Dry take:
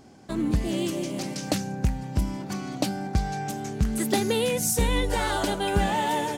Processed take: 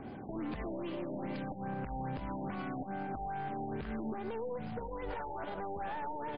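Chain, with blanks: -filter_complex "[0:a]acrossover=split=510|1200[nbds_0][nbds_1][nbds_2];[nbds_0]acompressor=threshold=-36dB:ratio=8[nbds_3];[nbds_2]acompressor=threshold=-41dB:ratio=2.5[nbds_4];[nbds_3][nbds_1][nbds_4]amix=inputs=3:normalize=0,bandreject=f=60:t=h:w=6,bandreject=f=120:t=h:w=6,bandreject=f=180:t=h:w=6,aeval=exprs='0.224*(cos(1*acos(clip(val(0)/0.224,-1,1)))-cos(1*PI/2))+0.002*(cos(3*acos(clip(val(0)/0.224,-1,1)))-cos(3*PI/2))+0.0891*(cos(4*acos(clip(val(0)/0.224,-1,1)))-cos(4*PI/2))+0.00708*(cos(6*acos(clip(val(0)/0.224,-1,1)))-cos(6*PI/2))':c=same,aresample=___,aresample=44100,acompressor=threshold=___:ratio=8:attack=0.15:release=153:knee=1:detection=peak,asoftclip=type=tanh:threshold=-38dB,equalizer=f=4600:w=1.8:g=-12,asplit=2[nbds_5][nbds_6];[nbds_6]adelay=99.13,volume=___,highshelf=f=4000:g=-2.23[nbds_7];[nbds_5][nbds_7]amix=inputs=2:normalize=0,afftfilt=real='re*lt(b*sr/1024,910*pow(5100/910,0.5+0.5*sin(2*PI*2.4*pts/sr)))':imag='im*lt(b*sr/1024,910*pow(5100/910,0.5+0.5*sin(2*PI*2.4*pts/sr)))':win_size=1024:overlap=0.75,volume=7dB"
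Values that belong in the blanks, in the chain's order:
16000, -35dB, -17dB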